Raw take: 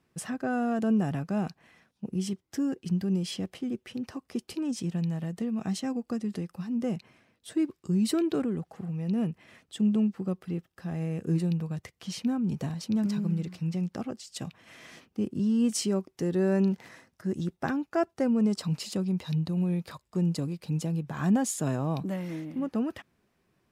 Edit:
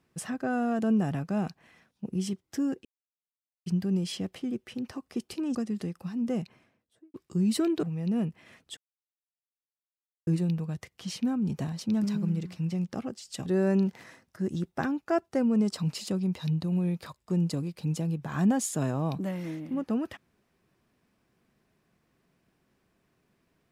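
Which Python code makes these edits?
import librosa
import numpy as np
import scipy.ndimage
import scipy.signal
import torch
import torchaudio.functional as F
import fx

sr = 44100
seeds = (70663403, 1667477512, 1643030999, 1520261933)

y = fx.studio_fade_out(x, sr, start_s=6.93, length_s=0.75)
y = fx.edit(y, sr, fx.insert_silence(at_s=2.85, length_s=0.81),
    fx.cut(start_s=4.74, length_s=1.35),
    fx.cut(start_s=8.37, length_s=0.48),
    fx.silence(start_s=9.79, length_s=1.5),
    fx.cut(start_s=14.48, length_s=1.83), tone=tone)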